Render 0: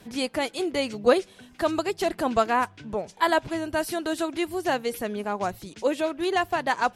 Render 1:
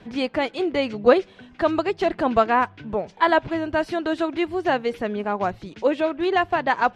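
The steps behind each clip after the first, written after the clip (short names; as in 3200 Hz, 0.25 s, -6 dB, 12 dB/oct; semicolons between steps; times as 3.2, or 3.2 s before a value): LPF 3100 Hz 12 dB/oct; gain +4 dB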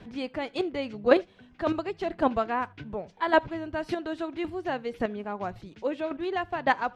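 low shelf 200 Hz +5 dB; chopper 1.8 Hz, depth 60%, duty 10%; reverb, pre-delay 3 ms, DRR 23 dB; gain -2 dB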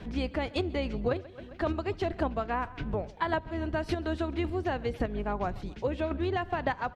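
octaver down 2 oct, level +1 dB; feedback echo 0.133 s, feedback 52%, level -24 dB; compressor 16:1, threshold -29 dBFS, peak gain reduction 18 dB; gain +3.5 dB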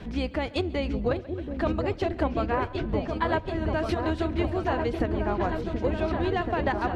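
repeats that get brighter 0.73 s, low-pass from 400 Hz, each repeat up 2 oct, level -3 dB; gain +2.5 dB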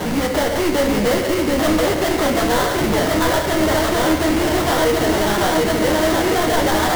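overdrive pedal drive 36 dB, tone 1300 Hz, clips at -11 dBFS; sample-rate reducer 2500 Hz, jitter 20%; shoebox room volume 110 m³, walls mixed, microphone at 0.5 m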